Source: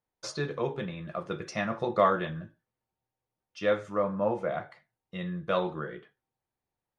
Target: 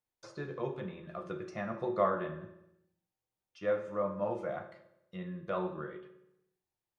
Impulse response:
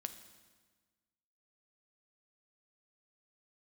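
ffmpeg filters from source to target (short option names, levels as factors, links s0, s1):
-filter_complex "[0:a]acrossover=split=2100[s0][s1];[s0]flanger=delay=6.5:depth=6.2:regen=-80:speed=0.7:shape=triangular[s2];[s1]acompressor=threshold=0.00112:ratio=5[s3];[s2][s3]amix=inputs=2:normalize=0[s4];[1:a]atrim=start_sample=2205,asetrate=74970,aresample=44100[s5];[s4][s5]afir=irnorm=-1:irlink=0,volume=1.88"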